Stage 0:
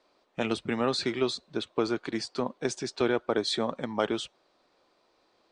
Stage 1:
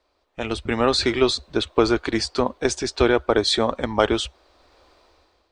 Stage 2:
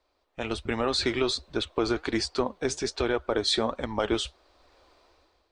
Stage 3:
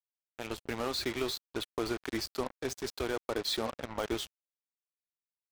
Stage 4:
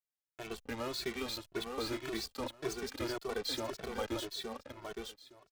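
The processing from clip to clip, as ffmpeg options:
-af "lowshelf=f=100:t=q:w=3:g=13.5,dynaudnorm=f=170:g=7:m=5.62,volume=0.841"
-af "alimiter=limit=0.335:level=0:latency=1:release=105,flanger=delay=0.8:depth=7.1:regen=77:speed=1.3:shape=triangular"
-af "acrusher=bits=4:mix=0:aa=0.5,volume=0.422"
-filter_complex "[0:a]aecho=1:1:865|1730|2595:0.562|0.09|0.0144,asplit=2[s0][s1];[s1]adelay=2.2,afreqshift=1.8[s2];[s0][s2]amix=inputs=2:normalize=1,volume=0.891"

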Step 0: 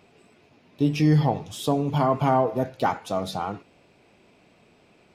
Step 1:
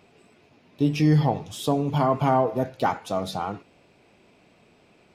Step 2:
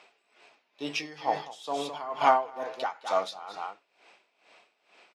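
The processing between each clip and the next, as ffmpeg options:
-af anull
-af "highpass=780,lowpass=6900,aecho=1:1:214:0.335,aeval=exprs='val(0)*pow(10,-18*(0.5-0.5*cos(2*PI*2.2*n/s))/20)':c=same,volume=2"

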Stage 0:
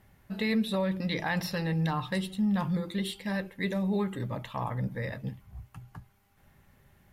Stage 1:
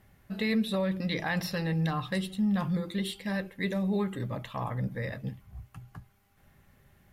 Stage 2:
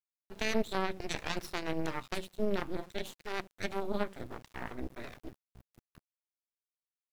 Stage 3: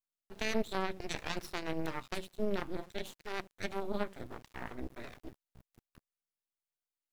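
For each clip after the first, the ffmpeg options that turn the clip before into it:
-af "bandreject=f=910:w=10"
-af "aeval=exprs='val(0)*gte(abs(val(0)),0.01)':c=same,aeval=exprs='0.126*(cos(1*acos(clip(val(0)/0.126,-1,1)))-cos(1*PI/2))+0.0562*(cos(2*acos(clip(val(0)/0.126,-1,1)))-cos(2*PI/2))+0.0501*(cos(3*acos(clip(val(0)/0.126,-1,1)))-cos(3*PI/2))+0.00316*(cos(6*acos(clip(val(0)/0.126,-1,1)))-cos(6*PI/2))':c=same"
-af "aeval=exprs='abs(val(0))':c=same,volume=0.794"

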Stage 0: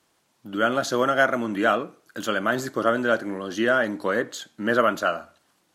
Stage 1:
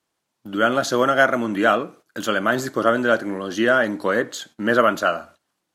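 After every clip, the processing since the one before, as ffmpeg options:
-af "agate=range=0.224:threshold=0.00398:ratio=16:detection=peak,volume=1.5"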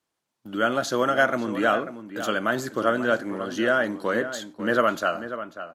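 -filter_complex "[0:a]asplit=2[s0][s1];[s1]adelay=542.3,volume=0.282,highshelf=f=4000:g=-12.2[s2];[s0][s2]amix=inputs=2:normalize=0,volume=0.596"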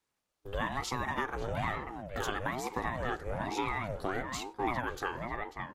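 -af "acompressor=threshold=0.0447:ratio=6,asubboost=boost=4.5:cutoff=170,aeval=exprs='val(0)*sin(2*PI*410*n/s+410*0.55/1.1*sin(2*PI*1.1*n/s))':c=same"

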